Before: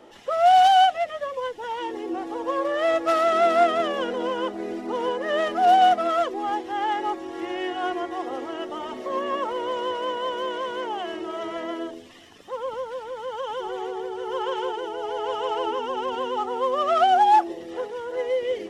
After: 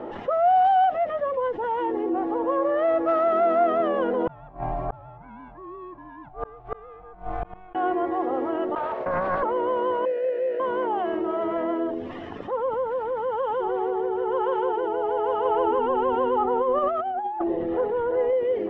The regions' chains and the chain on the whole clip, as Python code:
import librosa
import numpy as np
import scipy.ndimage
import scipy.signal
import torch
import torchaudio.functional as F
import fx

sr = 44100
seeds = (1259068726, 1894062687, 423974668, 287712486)

y = fx.chain(x, sr, fx.ring_mod(carrier_hz=370.0),
    fx.gate_flip(shuts_db=-22.0, range_db=-38), at=(4.27, 7.75))
y = fx.chain(y, sr, fx.gate_hold(open_db=-25.0, close_db=-32.0, hold_ms=71.0, range_db=-21, attack_ms=1.4, release_ms=100.0),
    fx.steep_highpass(hz=440.0, slope=36),
    fx.doppler_dist(depth_ms=0.49), at=(8.75, 9.43))
y = fx.chain(y, sr, fx.halfwave_hold(),
    fx.vowel_filter(vowel='e'), at=(10.05, 10.6))
y = fx.chain(y, sr, fx.lowpass(hz=4500.0, slope=24),
    fx.low_shelf(hz=80.0, db=11.0),
    fx.over_compress(threshold_db=-24.0, ratio=-0.5), at=(15.45, 18.33))
y = scipy.signal.sosfilt(scipy.signal.butter(2, 1200.0, 'lowpass', fs=sr, output='sos'), y)
y = fx.env_flatten(y, sr, amount_pct=50)
y = y * librosa.db_to_amplitude(-3.0)